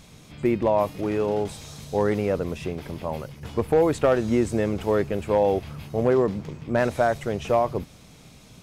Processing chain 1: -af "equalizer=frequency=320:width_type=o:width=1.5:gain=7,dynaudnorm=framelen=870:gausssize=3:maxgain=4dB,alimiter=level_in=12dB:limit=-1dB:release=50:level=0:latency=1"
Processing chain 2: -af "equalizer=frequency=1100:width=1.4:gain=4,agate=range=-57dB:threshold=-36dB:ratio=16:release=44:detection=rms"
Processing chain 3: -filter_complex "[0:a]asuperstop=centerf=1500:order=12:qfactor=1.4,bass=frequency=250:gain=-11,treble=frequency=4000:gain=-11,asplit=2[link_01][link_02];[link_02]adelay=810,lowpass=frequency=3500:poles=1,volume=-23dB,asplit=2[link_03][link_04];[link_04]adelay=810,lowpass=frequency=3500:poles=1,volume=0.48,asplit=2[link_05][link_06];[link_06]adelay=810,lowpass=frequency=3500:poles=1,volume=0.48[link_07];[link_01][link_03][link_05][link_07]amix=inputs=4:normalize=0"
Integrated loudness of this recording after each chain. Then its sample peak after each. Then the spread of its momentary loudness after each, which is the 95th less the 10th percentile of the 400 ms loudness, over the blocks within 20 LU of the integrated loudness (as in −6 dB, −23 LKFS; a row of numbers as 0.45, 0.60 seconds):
−12.0, −24.0, −26.5 LKFS; −1.0, −8.5, −10.5 dBFS; 8, 11, 12 LU